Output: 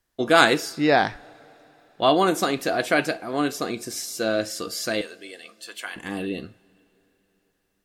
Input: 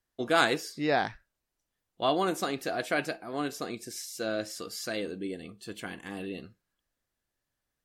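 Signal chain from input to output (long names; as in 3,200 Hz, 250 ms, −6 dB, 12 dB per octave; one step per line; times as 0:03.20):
0:05.01–0:05.96: high-pass filter 900 Hz 12 dB per octave
on a send: convolution reverb, pre-delay 3 ms, DRR 17 dB
on the sum: level +8 dB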